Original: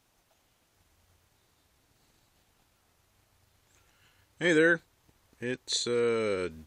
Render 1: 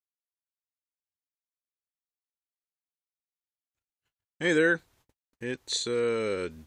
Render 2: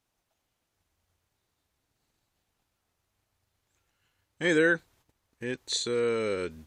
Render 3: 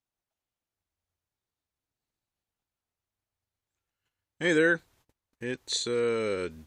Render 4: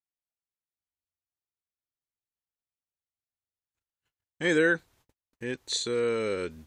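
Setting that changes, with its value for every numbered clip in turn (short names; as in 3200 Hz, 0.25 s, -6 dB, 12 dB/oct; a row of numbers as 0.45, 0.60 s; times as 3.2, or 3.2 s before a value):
gate, range: -54, -10, -23, -38 dB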